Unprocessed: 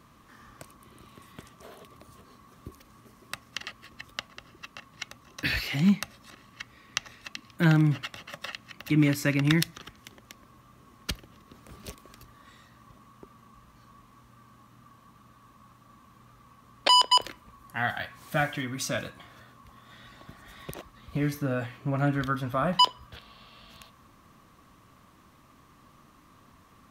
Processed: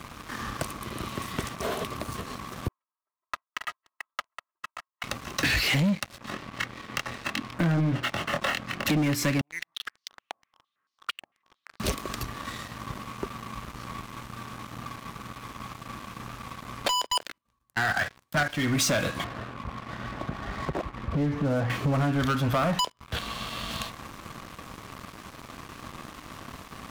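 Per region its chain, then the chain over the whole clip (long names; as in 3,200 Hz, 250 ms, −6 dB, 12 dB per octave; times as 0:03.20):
0:02.68–0:05.04: comb filter 3.1 ms, depth 75% + downward expander −43 dBFS + four-pole ladder band-pass 1,100 Hz, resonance 50%
0:06.18–0:08.86: low-pass filter 1,300 Hz 6 dB per octave + low-shelf EQ 74 Hz −11 dB + double-tracking delay 24 ms −5 dB
0:09.41–0:11.80: downward compressor 3 to 1, threshold −37 dBFS + band-pass on a step sequencer 8.9 Hz 740–4,700 Hz
0:17.15–0:18.50: dynamic equaliser 1,500 Hz, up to +6 dB, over −40 dBFS, Q 2.2 + output level in coarse steps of 11 dB + multiband upward and downward expander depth 100%
0:19.24–0:21.70: low-pass filter 1,300 Hz + downward compressor 3 to 1, threshold −43 dBFS
whole clip: high-shelf EQ 11,000 Hz −5.5 dB; downward compressor 8 to 1, threshold −36 dBFS; leveller curve on the samples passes 5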